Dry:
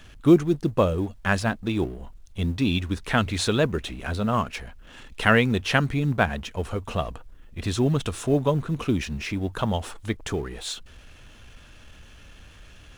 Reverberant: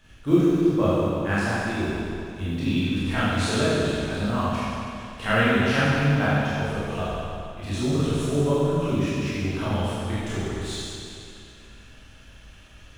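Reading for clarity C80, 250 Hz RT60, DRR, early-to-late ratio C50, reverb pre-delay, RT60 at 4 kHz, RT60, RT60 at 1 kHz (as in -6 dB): -2.5 dB, 2.5 s, -11.0 dB, -4.5 dB, 20 ms, 2.4 s, 2.5 s, 2.5 s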